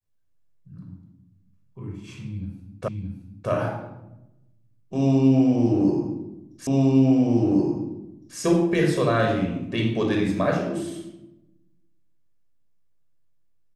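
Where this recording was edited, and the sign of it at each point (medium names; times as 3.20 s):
2.88 s: repeat of the last 0.62 s
6.67 s: repeat of the last 1.71 s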